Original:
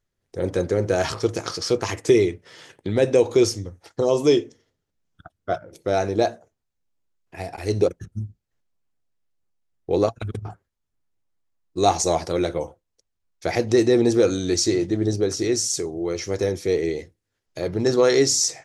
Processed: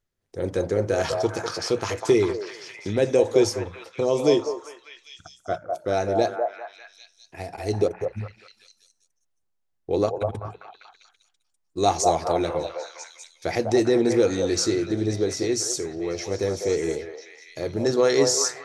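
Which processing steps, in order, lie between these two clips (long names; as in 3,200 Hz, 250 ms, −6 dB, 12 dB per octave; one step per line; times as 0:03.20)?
mains-hum notches 60/120/180 Hz
echo through a band-pass that steps 199 ms, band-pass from 730 Hz, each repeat 0.7 octaves, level −0.5 dB
level −2.5 dB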